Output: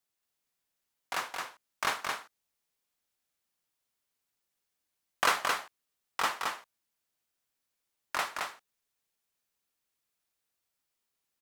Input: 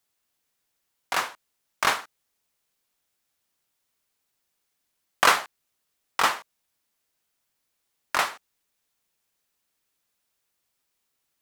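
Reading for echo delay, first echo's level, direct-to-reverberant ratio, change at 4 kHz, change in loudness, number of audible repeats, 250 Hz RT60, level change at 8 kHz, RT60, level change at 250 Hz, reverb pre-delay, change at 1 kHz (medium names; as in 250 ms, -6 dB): 219 ms, -4.0 dB, no reverb, -6.5 dB, -8.0 dB, 1, no reverb, -6.5 dB, no reverb, -6.5 dB, no reverb, -6.5 dB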